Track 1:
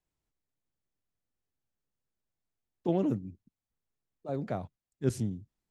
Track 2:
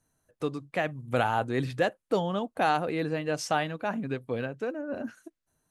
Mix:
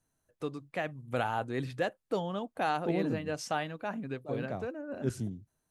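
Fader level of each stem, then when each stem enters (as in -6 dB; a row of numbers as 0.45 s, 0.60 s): -3.5 dB, -5.5 dB; 0.00 s, 0.00 s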